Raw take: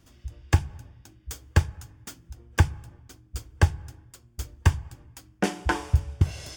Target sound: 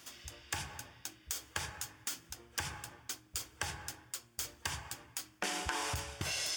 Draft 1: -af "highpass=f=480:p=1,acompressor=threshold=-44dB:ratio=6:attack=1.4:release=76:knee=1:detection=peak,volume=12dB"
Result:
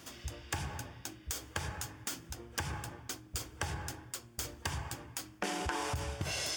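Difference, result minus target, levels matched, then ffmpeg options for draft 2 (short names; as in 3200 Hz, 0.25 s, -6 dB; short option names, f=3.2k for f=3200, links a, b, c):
500 Hz band +4.5 dB
-af "highpass=f=1.6k:p=1,acompressor=threshold=-44dB:ratio=6:attack=1.4:release=76:knee=1:detection=peak,volume=12dB"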